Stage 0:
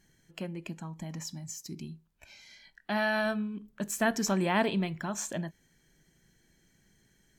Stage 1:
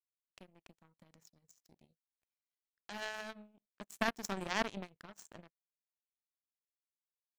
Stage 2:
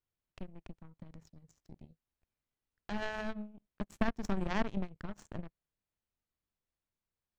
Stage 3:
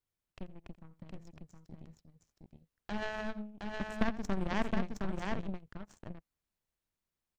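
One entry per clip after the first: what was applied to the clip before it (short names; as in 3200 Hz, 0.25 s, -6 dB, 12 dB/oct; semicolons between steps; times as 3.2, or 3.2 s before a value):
in parallel at +0.5 dB: compressor, threshold -39 dBFS, peak gain reduction 16 dB; on the sum: power-law curve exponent 3; gain +1 dB
RIAA curve playback; compressor 2:1, threshold -38 dBFS, peak gain reduction 9.5 dB; gain +5.5 dB
tapped delay 85/716 ms -17.5/-3.5 dB; Doppler distortion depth 0.26 ms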